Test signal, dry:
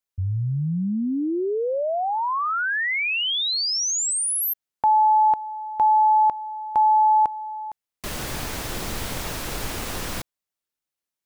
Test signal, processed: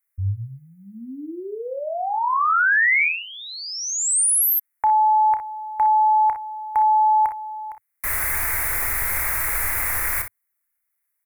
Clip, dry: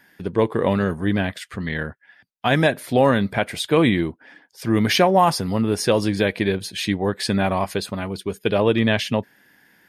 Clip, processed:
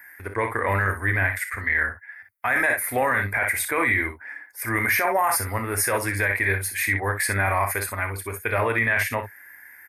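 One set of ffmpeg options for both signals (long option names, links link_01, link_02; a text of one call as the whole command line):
ffmpeg -i in.wav -af "firequalizer=gain_entry='entry(100,0);entry(160,-27);entry(240,-11);entry(950,2);entry(2100,13);entry(3000,-15);entry(11000,14)':delay=0.05:min_phase=1,aecho=1:1:31|51|61:0.251|0.2|0.299,alimiter=limit=-12.5dB:level=0:latency=1:release=11" out.wav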